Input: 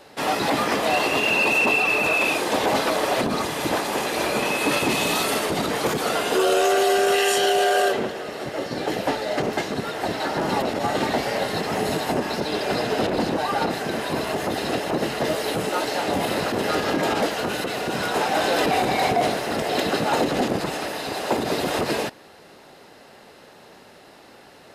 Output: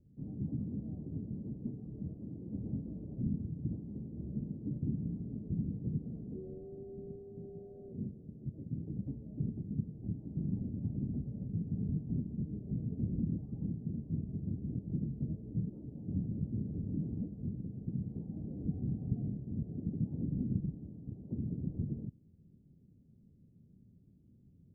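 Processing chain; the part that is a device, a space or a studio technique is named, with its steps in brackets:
the neighbour's flat through the wall (low-pass filter 190 Hz 24 dB per octave; parametric band 91 Hz +3 dB 0.95 octaves)
level −1.5 dB

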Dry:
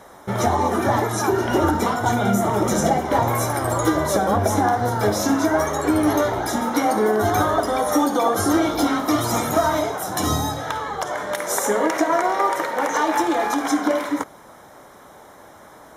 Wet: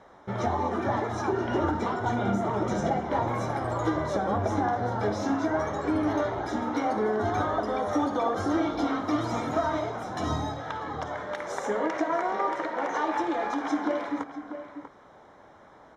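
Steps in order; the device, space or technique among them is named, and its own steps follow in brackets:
shout across a valley (high-frequency loss of the air 150 metres; slap from a distant wall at 110 metres, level −10 dB)
level −7.5 dB

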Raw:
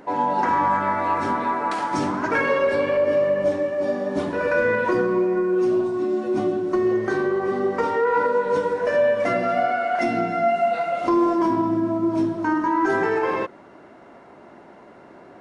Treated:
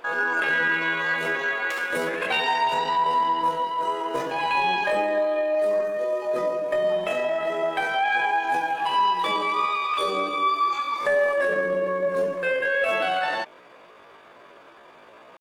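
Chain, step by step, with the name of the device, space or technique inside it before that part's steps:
chipmunk voice (pitch shifter +9 semitones)
level −2.5 dB

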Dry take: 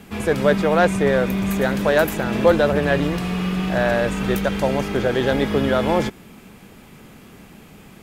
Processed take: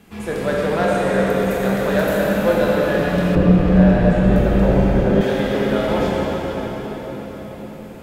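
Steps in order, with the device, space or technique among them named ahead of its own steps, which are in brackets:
cathedral (convolution reverb RT60 5.7 s, pre-delay 16 ms, DRR −6 dB)
0:03.35–0:05.21: spectral tilt −3 dB per octave
level −7 dB

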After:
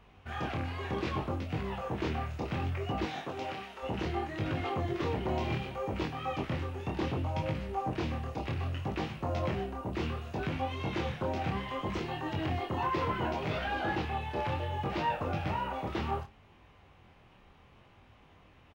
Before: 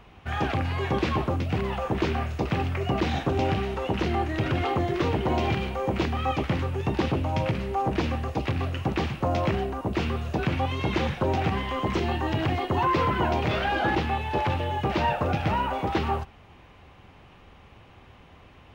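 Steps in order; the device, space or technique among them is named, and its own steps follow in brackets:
double-tracked vocal (double-tracking delay 32 ms −13 dB; chorus effect 0.66 Hz, delay 19 ms, depth 8 ms)
0:03.05–0:03.82: high-pass filter 290 Hz → 1,200 Hz 6 dB per octave
level −5 dB

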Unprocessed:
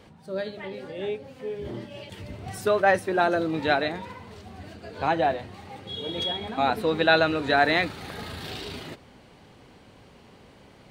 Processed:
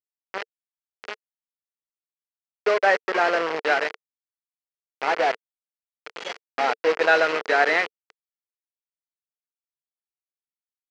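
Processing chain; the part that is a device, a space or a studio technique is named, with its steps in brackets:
hand-held game console (bit reduction 4 bits; loudspeaker in its box 440–4,500 Hz, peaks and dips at 450 Hz +8 dB, 1,400 Hz +3 dB, 2,000 Hz +4 dB, 3,700 Hz −9 dB)

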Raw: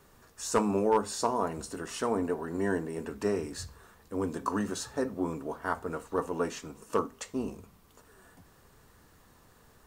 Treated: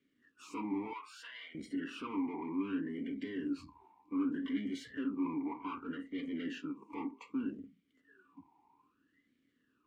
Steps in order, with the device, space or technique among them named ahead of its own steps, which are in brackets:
talk box (tube saturation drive 42 dB, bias 0.75; formant filter swept between two vowels i-u 0.64 Hz)
0:00.93–0:01.55: high-pass filter 1,100 Hz 12 dB per octave
noise reduction from a noise print of the clip's start 14 dB
level +16 dB

